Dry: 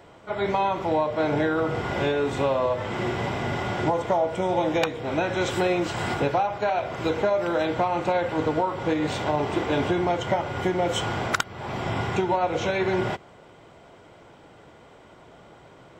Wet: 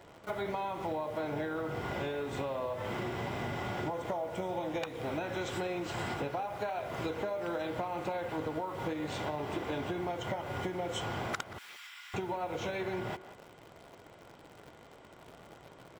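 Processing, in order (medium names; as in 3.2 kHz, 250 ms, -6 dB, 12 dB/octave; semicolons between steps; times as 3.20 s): in parallel at -5 dB: bit crusher 7-bit; on the sum: compression 6:1, threshold -28 dBFS, peak gain reduction 13 dB; 11.58–12.14 s: Bessel high-pass 2.3 kHz, order 6; speakerphone echo 180 ms, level -13 dB; trim -5.5 dB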